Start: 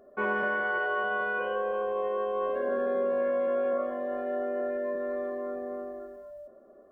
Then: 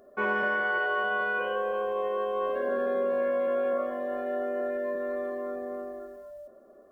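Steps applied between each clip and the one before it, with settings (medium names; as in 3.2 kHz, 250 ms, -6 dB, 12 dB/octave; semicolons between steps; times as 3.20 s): treble shelf 2.5 kHz +7.5 dB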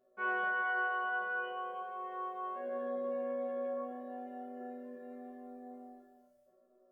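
chord resonator B2 fifth, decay 0.58 s; trim +1.5 dB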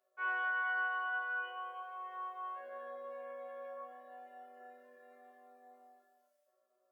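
high-pass 940 Hz 12 dB/octave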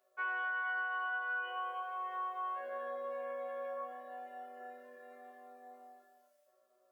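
compression 6:1, threshold -40 dBFS, peak gain reduction 8 dB; trim +5.5 dB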